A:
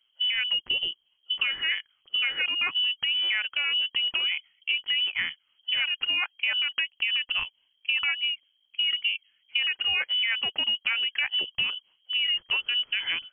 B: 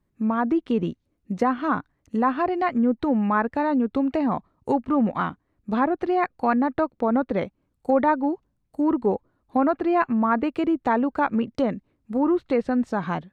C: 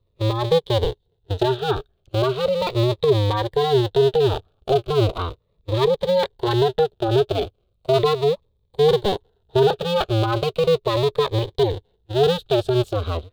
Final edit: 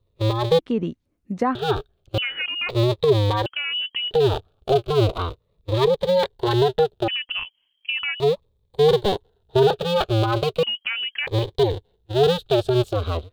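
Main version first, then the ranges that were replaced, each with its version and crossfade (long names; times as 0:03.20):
C
0:00.59–0:01.55: punch in from B
0:02.18–0:02.69: punch in from A
0:03.46–0:04.11: punch in from A
0:07.08–0:08.20: punch in from A
0:10.63–0:11.27: punch in from A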